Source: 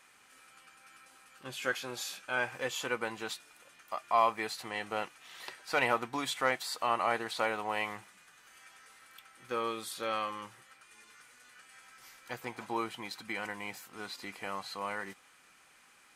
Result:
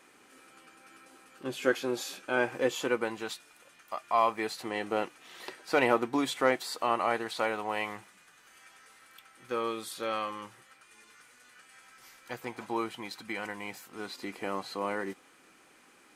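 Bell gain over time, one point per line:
bell 330 Hz 1.6 oct
2.69 s +14.5 dB
3.3 s +3 dB
4.17 s +3 dB
4.72 s +11 dB
6.6 s +11 dB
7.22 s +4 dB
13.77 s +4 dB
14.55 s +13 dB

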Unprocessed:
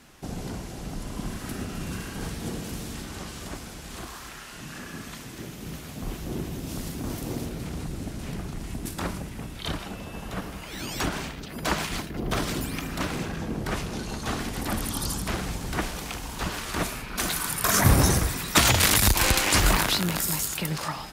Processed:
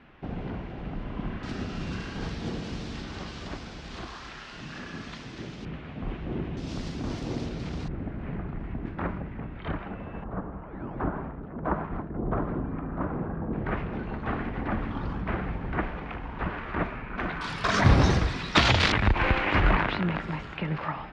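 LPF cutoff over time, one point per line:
LPF 24 dB/oct
2800 Hz
from 1.43 s 5000 Hz
from 5.65 s 2800 Hz
from 6.57 s 5300 Hz
from 7.88 s 2100 Hz
from 10.24 s 1300 Hz
from 13.53 s 2200 Hz
from 17.41 s 4400 Hz
from 18.92 s 2500 Hz

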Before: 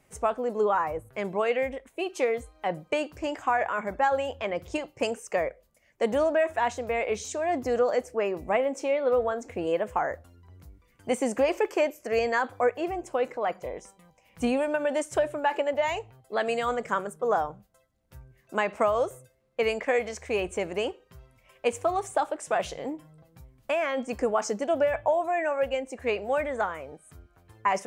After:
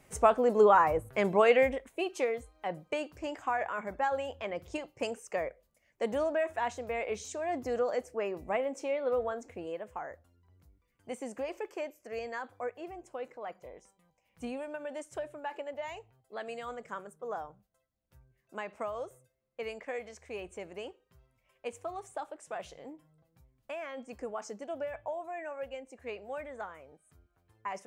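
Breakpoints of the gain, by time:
1.61 s +3 dB
2.38 s -6.5 dB
9.36 s -6.5 dB
9.77 s -13 dB

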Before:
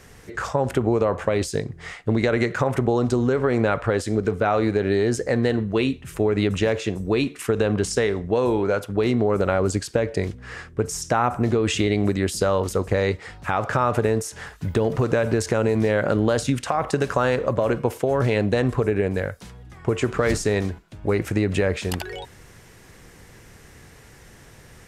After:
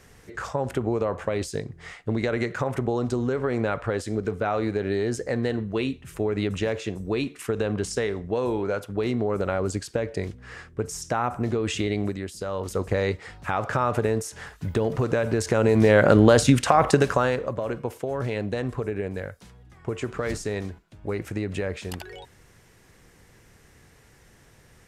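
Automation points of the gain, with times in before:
12.01 s -5 dB
12.34 s -13 dB
12.82 s -3 dB
15.33 s -3 dB
16 s +5 dB
16.89 s +5 dB
17.54 s -7.5 dB

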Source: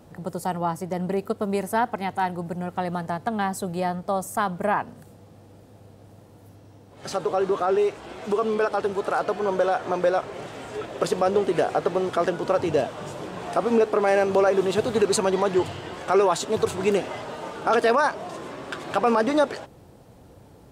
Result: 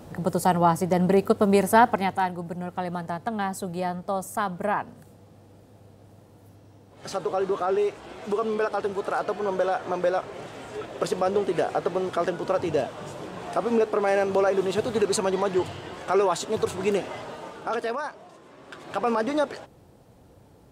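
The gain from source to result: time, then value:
1.9 s +6 dB
2.35 s -2.5 dB
17.26 s -2.5 dB
18.42 s -15 dB
19.03 s -4 dB

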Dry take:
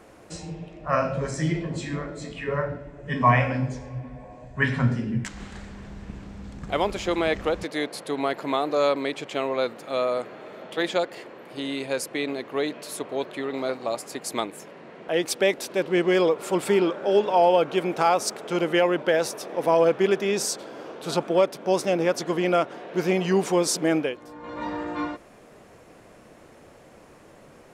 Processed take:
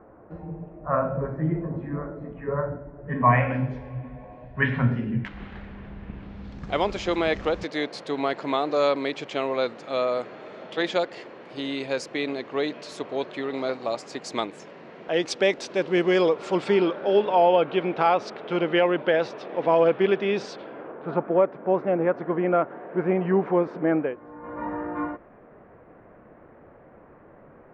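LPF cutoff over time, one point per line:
LPF 24 dB/oct
2.98 s 1400 Hz
3.59 s 3100 Hz
6.13 s 3100 Hz
6.75 s 6300 Hz
16.19 s 6300 Hz
17.46 s 3700 Hz
20.54 s 3700 Hz
20.95 s 1800 Hz

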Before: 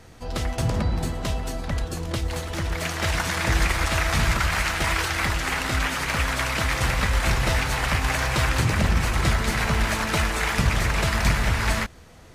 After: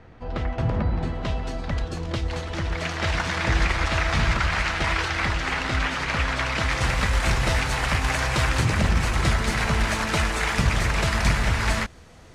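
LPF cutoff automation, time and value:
0.85 s 2300 Hz
1.61 s 5100 Hz
6.46 s 5100 Hz
7.04 s 9900 Hz

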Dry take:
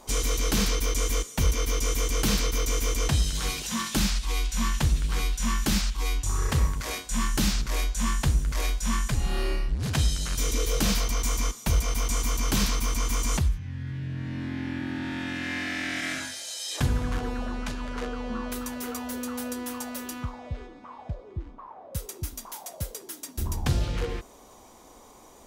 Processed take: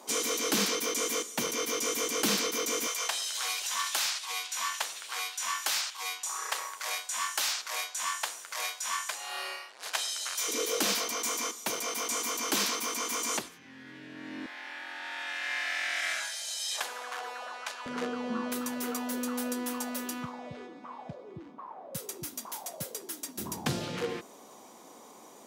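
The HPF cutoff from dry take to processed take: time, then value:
HPF 24 dB/oct
230 Hz
from 2.87 s 650 Hz
from 10.48 s 290 Hz
from 14.46 s 620 Hz
from 17.86 s 160 Hz

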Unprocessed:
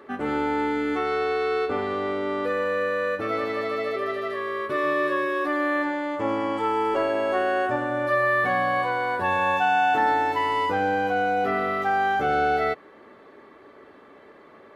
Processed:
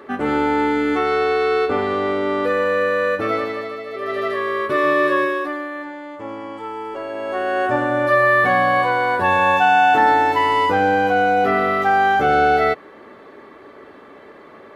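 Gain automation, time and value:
3.3 s +6.5 dB
3.86 s -4.5 dB
4.2 s +7 dB
5.23 s +7 dB
5.7 s -5.5 dB
7.01 s -5.5 dB
7.78 s +7 dB

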